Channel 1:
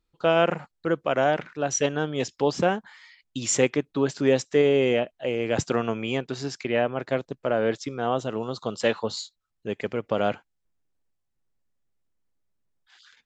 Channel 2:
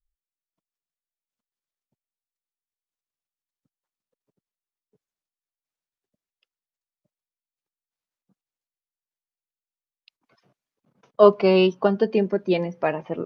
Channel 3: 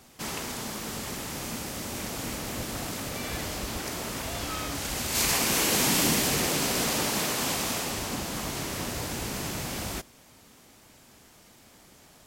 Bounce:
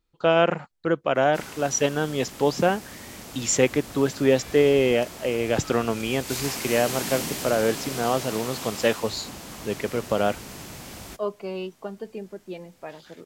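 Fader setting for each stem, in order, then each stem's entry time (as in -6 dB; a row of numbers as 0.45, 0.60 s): +1.5, -15.0, -6.5 dB; 0.00, 0.00, 1.15 s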